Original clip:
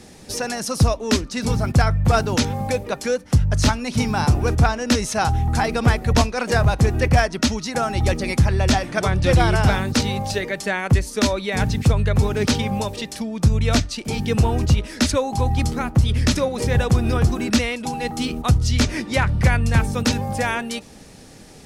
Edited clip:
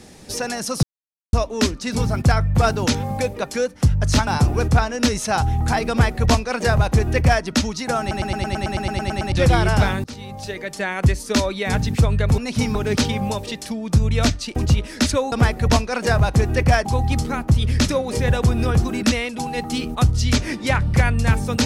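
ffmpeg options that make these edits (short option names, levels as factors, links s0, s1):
-filter_complex "[0:a]asplit=21[s0][s1][s2][s3][s4][s5][s6][s7][s8][s9][s10][s11][s12][s13][s14][s15][s16][s17][s18][s19][s20];[s0]atrim=end=0.83,asetpts=PTS-STARTPTS,afade=t=out:st=0.826:d=0.004:c=hsin,apad=pad_dur=0.5[s21];[s1]atrim=start=0.83:end=3.772,asetpts=PTS-STARTPTS,afade=t=in:d=0.004:c=hsin[s22];[s2]atrim=start=4.138:end=7.982[s23];[s3]atrim=start=7.868:end=7.982[s24];[s4]atrim=start=7.868:end=7.982[s25];[s5]atrim=start=7.868:end=7.982[s26];[s6]atrim=start=7.868:end=7.982[s27];[s7]atrim=start=7.868:end=7.982[s28];[s8]atrim=start=7.868:end=7.982[s29];[s9]atrim=start=7.868:end=7.982[s30];[s10]atrim=start=7.868:end=7.982[s31];[s11]atrim=start=7.868:end=7.982[s32];[s12]atrim=start=7.868:end=7.982[s33];[s13]atrim=start=7.868:end=7.982[s34];[s14]atrim=start=9.188:end=9.91,asetpts=PTS-STARTPTS,afade=t=out:st=0.718:d=0.004:c=hsin:silence=0.0891251[s35];[s15]atrim=start=9.91:end=12.252,asetpts=PTS-STARTPTS,afade=t=in:d=0.99:silence=0.0891251[s36];[s16]atrim=start=3.768:end=4.142[s37];[s17]atrim=start=12.248:end=14.062[s38];[s18]atrim=start=14.558:end=15.322[s39];[s19]atrim=start=5.768:end=7.302[s40];[s20]atrim=start=15.318[s41];[s21][s22]concat=n=2:v=0:a=1[s42];[s42][s23]acrossfade=d=0.004:c1=hsin:c2=hsin[s43];[s43][s24]acrossfade=d=0.004:c1=hsin:c2=hsin[s44];[s44][s25]acrossfade=d=0.004:c1=hsin:c2=hsin[s45];[s45][s26]acrossfade=d=0.004:c1=hsin:c2=hsin[s46];[s46][s27]acrossfade=d=0.004:c1=hsin:c2=hsin[s47];[s47][s28]acrossfade=d=0.004:c1=hsin:c2=hsin[s48];[s48][s29]acrossfade=d=0.004:c1=hsin:c2=hsin[s49];[s49][s30]acrossfade=d=0.004:c1=hsin:c2=hsin[s50];[s50][s31]acrossfade=d=0.004:c1=hsin:c2=hsin[s51];[s51][s32]acrossfade=d=0.004:c1=hsin:c2=hsin[s52];[s52][s33]acrossfade=d=0.004:c1=hsin:c2=hsin[s53];[s53][s34]acrossfade=d=0.004:c1=hsin:c2=hsin[s54];[s35][s36]concat=n=2:v=0:a=1[s55];[s54][s55]acrossfade=d=0.004:c1=hsin:c2=hsin[s56];[s56][s37]acrossfade=d=0.004:c1=hsin:c2=hsin[s57];[s57][s38]acrossfade=d=0.004:c1=hsin:c2=hsin[s58];[s58][s39]acrossfade=d=0.004:c1=hsin:c2=hsin[s59];[s59][s40]acrossfade=d=0.004:c1=hsin:c2=hsin[s60];[s60][s41]acrossfade=d=0.004:c1=hsin:c2=hsin"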